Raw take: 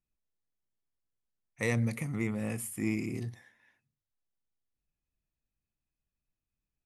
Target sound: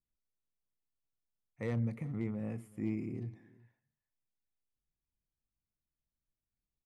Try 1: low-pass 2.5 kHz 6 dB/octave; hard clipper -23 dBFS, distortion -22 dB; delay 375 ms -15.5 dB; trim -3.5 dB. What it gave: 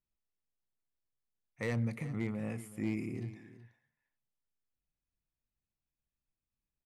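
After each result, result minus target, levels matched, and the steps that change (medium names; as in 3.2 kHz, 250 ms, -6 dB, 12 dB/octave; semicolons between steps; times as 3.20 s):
2 kHz band +7.0 dB; echo-to-direct +6.5 dB
change: low-pass 670 Hz 6 dB/octave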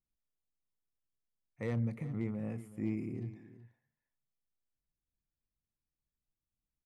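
echo-to-direct +6.5 dB
change: delay 375 ms -22 dB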